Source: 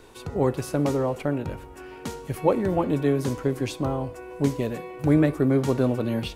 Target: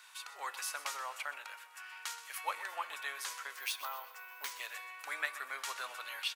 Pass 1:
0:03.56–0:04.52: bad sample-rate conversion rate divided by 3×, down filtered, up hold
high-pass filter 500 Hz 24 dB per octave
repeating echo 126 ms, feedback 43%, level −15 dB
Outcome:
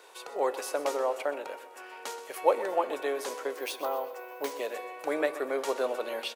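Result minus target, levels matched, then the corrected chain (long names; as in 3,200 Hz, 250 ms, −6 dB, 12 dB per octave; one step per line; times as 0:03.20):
500 Hz band +17.0 dB
0:03.56–0:04.52: bad sample-rate conversion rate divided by 3×, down filtered, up hold
high-pass filter 1,200 Hz 24 dB per octave
repeating echo 126 ms, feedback 43%, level −15 dB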